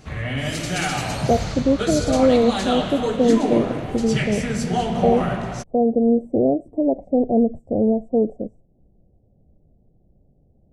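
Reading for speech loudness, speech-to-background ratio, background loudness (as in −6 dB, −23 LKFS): −21.0 LKFS, 3.5 dB, −24.5 LKFS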